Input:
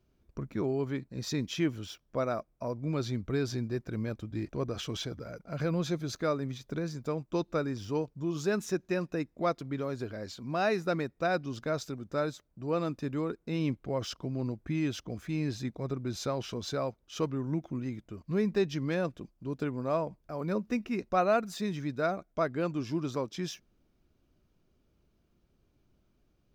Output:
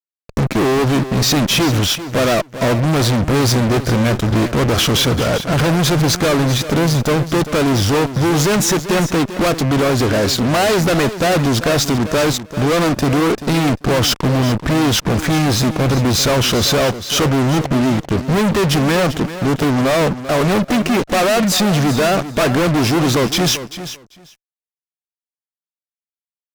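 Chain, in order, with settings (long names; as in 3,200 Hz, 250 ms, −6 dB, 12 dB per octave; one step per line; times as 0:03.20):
fuzz pedal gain 49 dB, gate −52 dBFS
repeating echo 392 ms, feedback 15%, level −12.5 dB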